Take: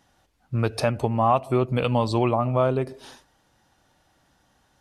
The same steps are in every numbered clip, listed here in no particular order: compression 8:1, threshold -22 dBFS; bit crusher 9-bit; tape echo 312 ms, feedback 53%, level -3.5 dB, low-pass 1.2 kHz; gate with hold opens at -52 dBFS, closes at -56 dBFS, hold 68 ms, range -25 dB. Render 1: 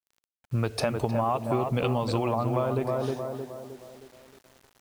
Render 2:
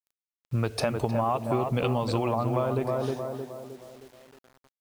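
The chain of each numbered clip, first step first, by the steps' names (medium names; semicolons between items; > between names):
tape echo > compression > bit crusher > gate with hold; gate with hold > tape echo > compression > bit crusher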